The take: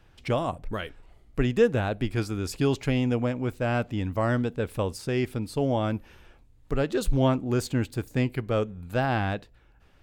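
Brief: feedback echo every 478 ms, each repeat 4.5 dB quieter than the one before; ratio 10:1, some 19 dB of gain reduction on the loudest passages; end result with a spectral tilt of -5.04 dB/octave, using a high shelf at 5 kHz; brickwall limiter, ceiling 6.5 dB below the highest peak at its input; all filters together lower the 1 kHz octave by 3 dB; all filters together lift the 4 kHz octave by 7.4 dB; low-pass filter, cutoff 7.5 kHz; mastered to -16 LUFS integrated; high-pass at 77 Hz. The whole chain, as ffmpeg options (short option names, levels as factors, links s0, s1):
-af "highpass=77,lowpass=7500,equalizer=f=1000:t=o:g=-5,equalizer=f=4000:t=o:g=7.5,highshelf=f=5000:g=6.5,acompressor=threshold=0.0178:ratio=10,alimiter=level_in=2.11:limit=0.0631:level=0:latency=1,volume=0.473,aecho=1:1:478|956|1434|1912|2390|2868|3346|3824|4302:0.596|0.357|0.214|0.129|0.0772|0.0463|0.0278|0.0167|0.01,volume=15.8"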